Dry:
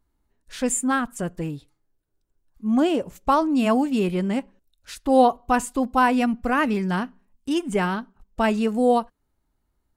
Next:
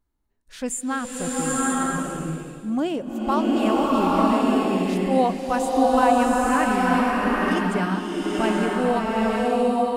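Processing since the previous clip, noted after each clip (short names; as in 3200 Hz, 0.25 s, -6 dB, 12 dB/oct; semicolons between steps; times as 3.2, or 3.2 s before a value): bloom reverb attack 0.91 s, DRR -5.5 dB; gain -4.5 dB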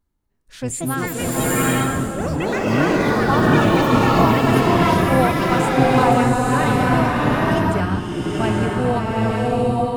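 octaver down 1 oct, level 0 dB; echoes that change speed 0.34 s, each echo +5 st, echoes 3; gain +1 dB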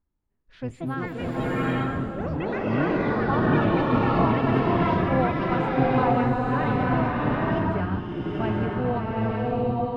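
air absorption 320 m; gain -5.5 dB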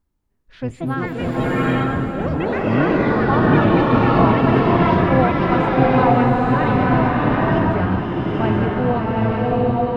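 echo with dull and thin repeats by turns 0.249 s, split 830 Hz, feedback 89%, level -13.5 dB; gain +6.5 dB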